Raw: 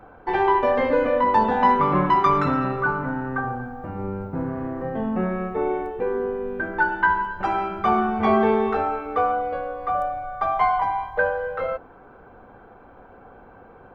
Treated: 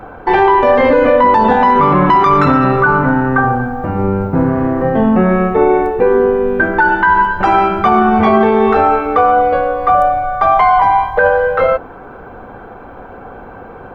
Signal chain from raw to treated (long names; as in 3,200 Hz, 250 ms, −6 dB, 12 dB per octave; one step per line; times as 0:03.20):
0:05.61–0:06.07: notch filter 3,100 Hz, Q 9.8
boost into a limiter +15.5 dB
level −1 dB